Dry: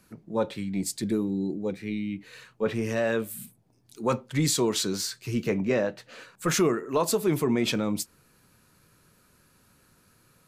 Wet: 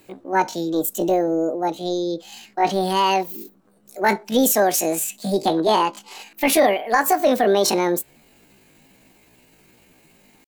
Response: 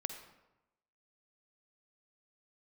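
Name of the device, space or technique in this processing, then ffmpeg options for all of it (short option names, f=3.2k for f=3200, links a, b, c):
chipmunk voice: -af "asetrate=74167,aresample=44100,atempo=0.594604,volume=7.5dB"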